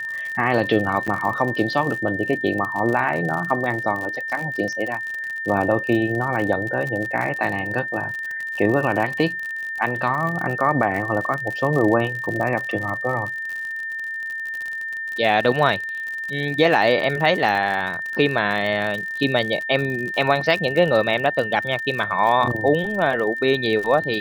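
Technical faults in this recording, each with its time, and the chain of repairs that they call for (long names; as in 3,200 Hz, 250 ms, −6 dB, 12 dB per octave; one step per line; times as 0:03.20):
surface crackle 59 per second −26 dBFS
whistle 1,800 Hz −26 dBFS
0:01.07–0:01.08: drop-out 6.7 ms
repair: click removal
notch filter 1,800 Hz, Q 30
repair the gap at 0:01.07, 6.7 ms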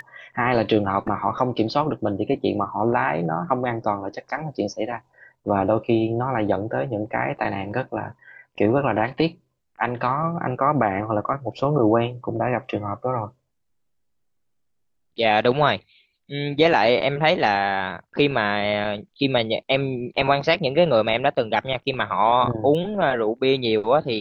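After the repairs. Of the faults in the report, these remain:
none of them is left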